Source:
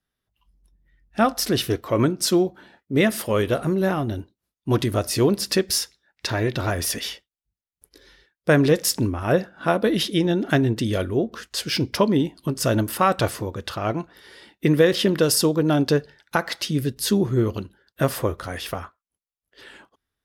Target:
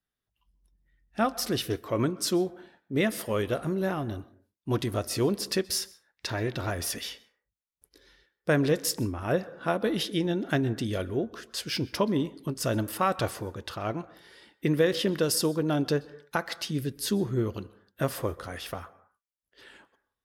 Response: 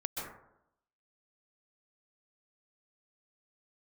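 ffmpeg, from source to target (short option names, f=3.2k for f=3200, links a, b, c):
-filter_complex "[0:a]asplit=2[a][b];[b]lowshelf=f=210:g=-11.5[c];[1:a]atrim=start_sample=2205,afade=t=out:st=0.36:d=0.01,atrim=end_sample=16317[d];[c][d]afir=irnorm=-1:irlink=0,volume=-19dB[e];[a][e]amix=inputs=2:normalize=0,volume=-7.5dB"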